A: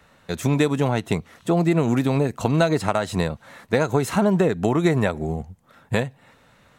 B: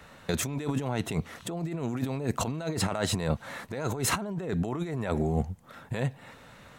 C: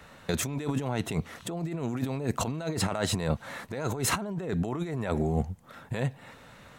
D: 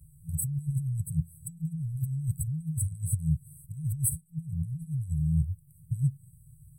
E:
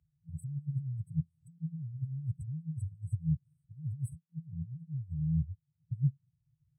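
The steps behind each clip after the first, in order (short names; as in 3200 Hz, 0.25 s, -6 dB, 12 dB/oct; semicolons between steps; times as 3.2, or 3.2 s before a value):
negative-ratio compressor -28 dBFS, ratio -1; gain -2.5 dB
nothing audible
FFT band-reject 170–7900 Hz; gain +4.5 dB
per-bin expansion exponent 1.5; BPF 110–2400 Hz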